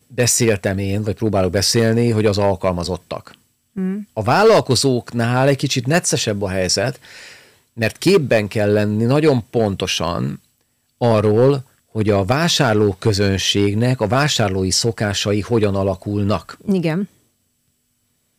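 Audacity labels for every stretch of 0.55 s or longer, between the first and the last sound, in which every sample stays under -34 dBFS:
10.360000	11.010000	silence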